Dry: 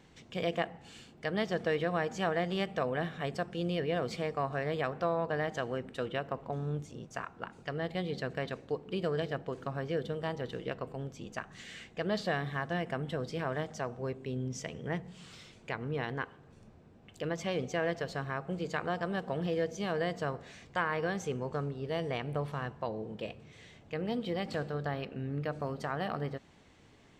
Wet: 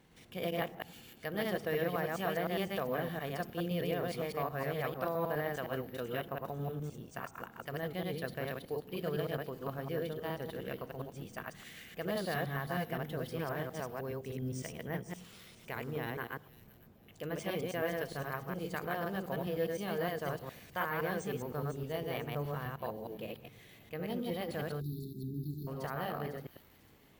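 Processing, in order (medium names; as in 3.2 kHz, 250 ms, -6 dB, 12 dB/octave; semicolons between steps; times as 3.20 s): chunks repeated in reverse 103 ms, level -1 dB; careless resampling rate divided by 3×, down none, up hold; feedback echo behind a high-pass 500 ms, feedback 33%, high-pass 4.9 kHz, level -8.5 dB; spectral selection erased 24.80–25.67 s, 430–3500 Hz; trim -5 dB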